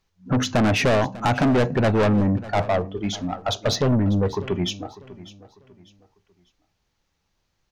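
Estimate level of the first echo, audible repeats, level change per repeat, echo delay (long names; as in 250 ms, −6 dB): −18.0 dB, 2, −9.5 dB, 597 ms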